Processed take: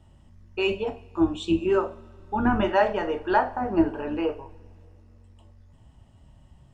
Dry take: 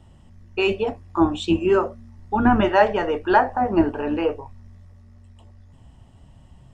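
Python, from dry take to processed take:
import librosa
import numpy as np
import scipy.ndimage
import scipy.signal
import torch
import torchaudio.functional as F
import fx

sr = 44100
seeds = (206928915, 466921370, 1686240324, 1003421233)

y = fx.peak_eq(x, sr, hz=1000.0, db=-7.5, octaves=1.2, at=(1.07, 1.66))
y = fx.rev_double_slope(y, sr, seeds[0], early_s=0.37, late_s=2.7, knee_db=-22, drr_db=8.5)
y = F.gain(torch.from_numpy(y), -5.5).numpy()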